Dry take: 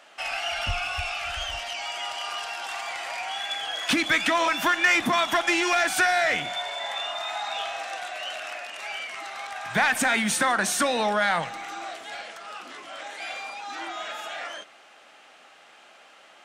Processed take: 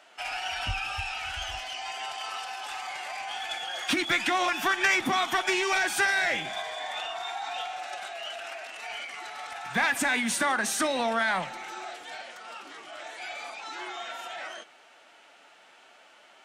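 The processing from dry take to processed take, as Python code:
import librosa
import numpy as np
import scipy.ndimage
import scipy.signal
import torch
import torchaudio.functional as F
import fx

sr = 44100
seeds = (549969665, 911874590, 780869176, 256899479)

y = fx.rattle_buzz(x, sr, strikes_db=-40.0, level_db=-31.0)
y = fx.pitch_keep_formants(y, sr, semitones=1.5)
y = F.gain(torch.from_numpy(y), -3.0).numpy()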